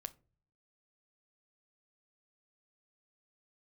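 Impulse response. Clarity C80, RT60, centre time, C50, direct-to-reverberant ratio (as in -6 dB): 27.5 dB, not exponential, 2 ms, 21.0 dB, 12.0 dB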